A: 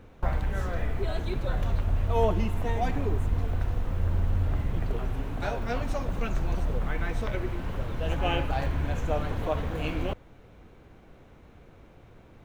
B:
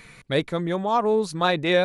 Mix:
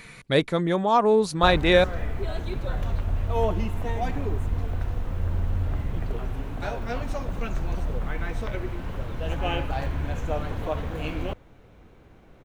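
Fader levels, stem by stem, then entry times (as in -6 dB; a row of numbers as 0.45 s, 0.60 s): 0.0 dB, +2.0 dB; 1.20 s, 0.00 s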